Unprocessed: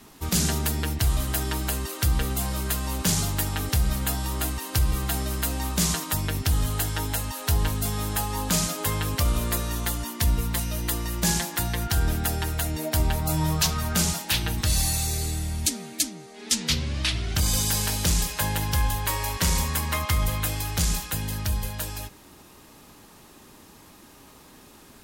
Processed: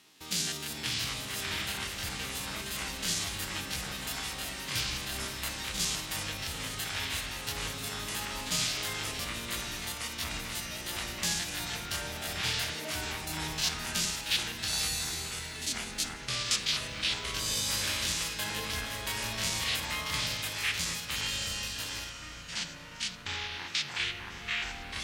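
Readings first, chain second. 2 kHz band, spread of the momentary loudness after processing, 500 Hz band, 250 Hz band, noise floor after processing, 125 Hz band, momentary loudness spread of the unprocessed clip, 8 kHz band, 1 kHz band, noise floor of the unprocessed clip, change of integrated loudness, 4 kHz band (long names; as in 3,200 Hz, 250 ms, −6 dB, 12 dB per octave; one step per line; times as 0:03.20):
−0.5 dB, 6 LU, −9.0 dB, −12.5 dB, −44 dBFS, −16.5 dB, 5 LU, −6.0 dB, −8.0 dB, −51 dBFS, −6.5 dB, −0.5 dB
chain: spectrum averaged block by block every 50 ms
meter weighting curve D
in parallel at −12 dB: bit reduction 6 bits
on the sum: flanger 0.12 Hz, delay 6.3 ms, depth 5.2 ms, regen −61%
delay with pitch and tempo change per echo 400 ms, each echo −6 semitones, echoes 2
level −9 dB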